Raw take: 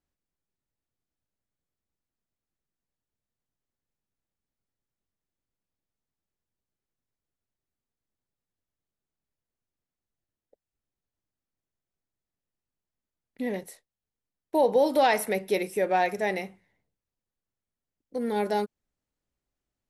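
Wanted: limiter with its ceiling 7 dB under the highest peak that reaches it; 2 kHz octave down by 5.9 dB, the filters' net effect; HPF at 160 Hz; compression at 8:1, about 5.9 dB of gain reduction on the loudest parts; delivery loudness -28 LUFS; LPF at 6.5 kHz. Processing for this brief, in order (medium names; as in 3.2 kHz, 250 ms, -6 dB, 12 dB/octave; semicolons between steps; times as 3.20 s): high-pass 160 Hz; low-pass 6.5 kHz; peaking EQ 2 kHz -7 dB; compression 8:1, threshold -23 dBFS; trim +6.5 dB; peak limiter -17.5 dBFS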